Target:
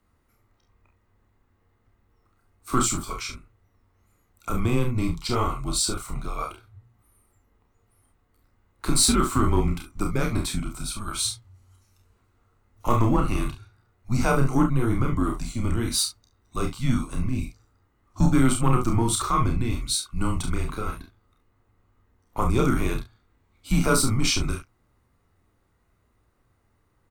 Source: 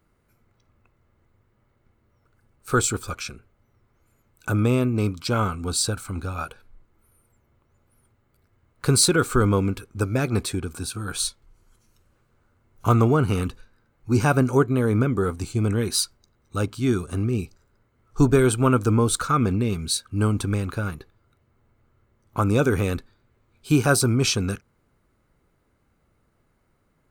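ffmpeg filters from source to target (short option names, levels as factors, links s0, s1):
-af "aecho=1:1:31|45|69:0.596|0.398|0.282,acontrast=40,afreqshift=-120,volume=0.422"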